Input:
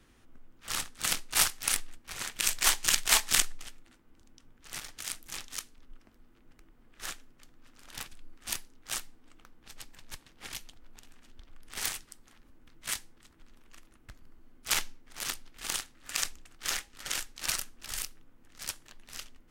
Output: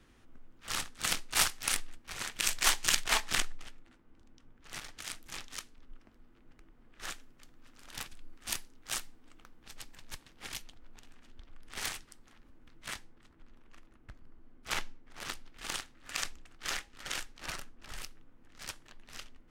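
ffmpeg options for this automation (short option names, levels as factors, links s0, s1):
-af "asetnsamples=n=441:p=0,asendcmd='3.04 lowpass f 2500;4.69 lowpass f 4200;7.1 lowpass f 11000;10.62 lowpass f 4400;12.88 lowpass f 1900;15.3 lowpass f 3500;17.36 lowpass f 1400;18.02 lowpass f 3300',lowpass=f=6600:p=1"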